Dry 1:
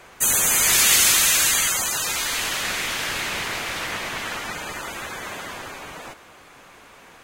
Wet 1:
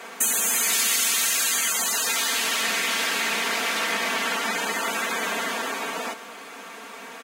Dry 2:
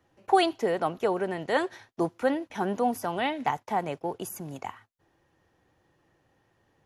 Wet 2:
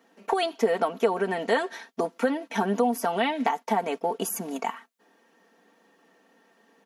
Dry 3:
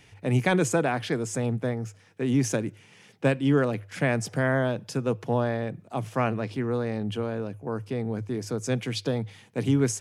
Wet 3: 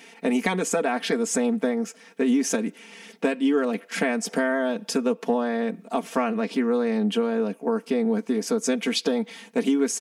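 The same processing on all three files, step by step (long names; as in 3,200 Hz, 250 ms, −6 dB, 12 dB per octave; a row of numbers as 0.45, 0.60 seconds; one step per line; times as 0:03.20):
linear-phase brick-wall high-pass 180 Hz
downward compressor 4 to 1, threshold −30 dBFS
comb filter 4.4 ms, depth 68%
normalise the peak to −9 dBFS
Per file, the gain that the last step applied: +6.0, +7.0, +7.5 decibels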